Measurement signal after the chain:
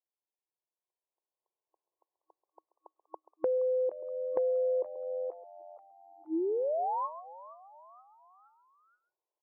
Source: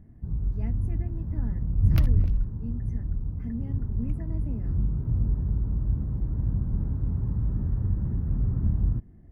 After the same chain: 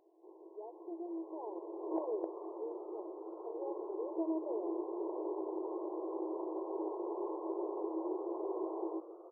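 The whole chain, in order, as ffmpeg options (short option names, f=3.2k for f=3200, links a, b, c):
-filter_complex "[0:a]afftfilt=real='re*between(b*sr/4096,320,1100)':imag='im*between(b*sr/4096,320,1100)':win_size=4096:overlap=0.75,acrossover=split=760[a][b];[b]alimiter=level_in=16.5dB:limit=-24dB:level=0:latency=1:release=87,volume=-16.5dB[c];[a][c]amix=inputs=2:normalize=0,asplit=2[d][e];[e]adelay=134.1,volume=-18dB,highshelf=f=4k:g=-3.02[f];[d][f]amix=inputs=2:normalize=0,acompressor=threshold=-45dB:ratio=4,asplit=2[g][h];[h]asplit=4[i][j][k][l];[i]adelay=472,afreqshift=91,volume=-18dB[m];[j]adelay=944,afreqshift=182,volume=-24.4dB[n];[k]adelay=1416,afreqshift=273,volume=-30.8dB[o];[l]adelay=1888,afreqshift=364,volume=-37.1dB[p];[m][n][o][p]amix=inputs=4:normalize=0[q];[g][q]amix=inputs=2:normalize=0,dynaudnorm=f=100:g=31:m=11.5dB,volume=2dB"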